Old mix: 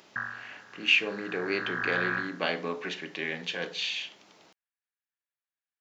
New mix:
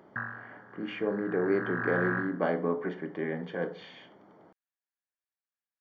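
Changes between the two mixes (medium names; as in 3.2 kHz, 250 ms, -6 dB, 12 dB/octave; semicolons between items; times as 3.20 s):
speech: add Savitzky-Golay filter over 41 samples; master: add tilt shelf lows +6.5 dB, about 1.1 kHz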